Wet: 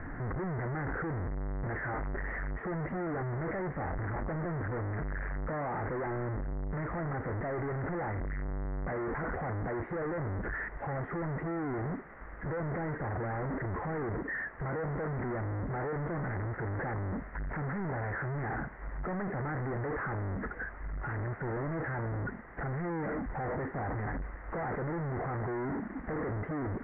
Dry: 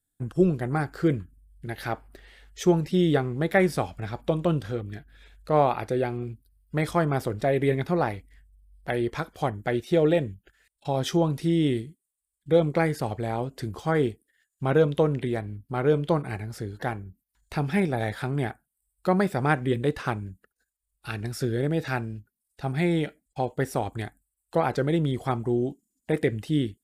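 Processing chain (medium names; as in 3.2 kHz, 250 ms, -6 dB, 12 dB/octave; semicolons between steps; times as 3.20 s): one-bit comparator; Chebyshev low-pass 2 kHz, order 6; trim -6.5 dB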